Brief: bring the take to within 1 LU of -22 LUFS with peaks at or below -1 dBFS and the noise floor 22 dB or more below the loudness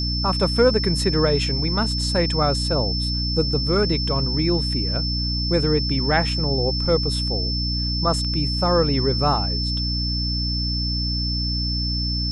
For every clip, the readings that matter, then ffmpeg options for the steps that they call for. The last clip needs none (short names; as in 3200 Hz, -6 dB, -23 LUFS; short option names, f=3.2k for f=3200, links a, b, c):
hum 60 Hz; harmonics up to 300 Hz; hum level -23 dBFS; steady tone 5300 Hz; tone level -25 dBFS; loudness -21.0 LUFS; peak -4.5 dBFS; loudness target -22.0 LUFS
-> -af "bandreject=f=60:t=h:w=4,bandreject=f=120:t=h:w=4,bandreject=f=180:t=h:w=4,bandreject=f=240:t=h:w=4,bandreject=f=300:t=h:w=4"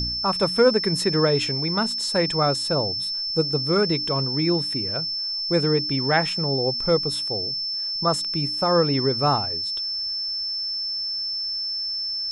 hum none; steady tone 5300 Hz; tone level -25 dBFS
-> -af "bandreject=f=5.3k:w=30"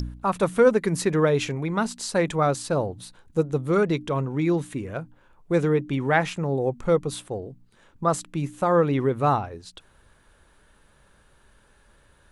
steady tone none; loudness -24.5 LUFS; peak -6.5 dBFS; loudness target -22.0 LUFS
-> -af "volume=2.5dB"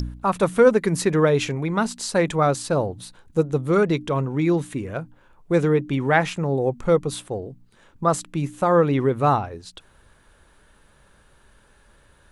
loudness -22.0 LUFS; peak -4.0 dBFS; noise floor -56 dBFS